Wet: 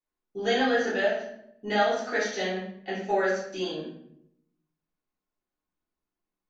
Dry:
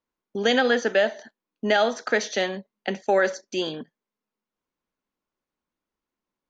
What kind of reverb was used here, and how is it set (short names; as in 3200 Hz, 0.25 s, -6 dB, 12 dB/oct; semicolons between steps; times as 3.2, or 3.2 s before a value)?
shoebox room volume 150 m³, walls mixed, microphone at 3.4 m; gain -15.5 dB